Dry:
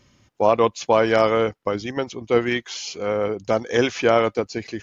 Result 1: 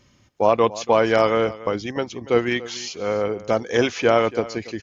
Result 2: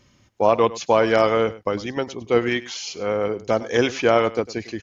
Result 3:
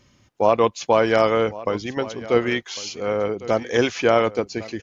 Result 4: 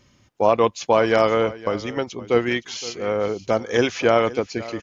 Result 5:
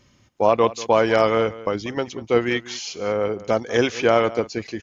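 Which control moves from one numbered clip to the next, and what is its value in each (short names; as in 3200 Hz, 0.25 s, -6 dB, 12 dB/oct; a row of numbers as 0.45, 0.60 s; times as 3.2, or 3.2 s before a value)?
echo, time: 0.285, 0.102, 1.102, 0.518, 0.19 s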